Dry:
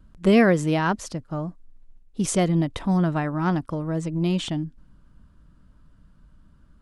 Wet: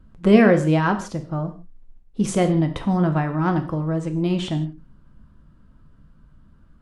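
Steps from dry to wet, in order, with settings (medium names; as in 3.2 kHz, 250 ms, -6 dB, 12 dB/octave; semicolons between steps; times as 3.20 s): treble shelf 3.4 kHz -8.5 dB; gated-style reverb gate 190 ms falling, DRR 6 dB; trim +2.5 dB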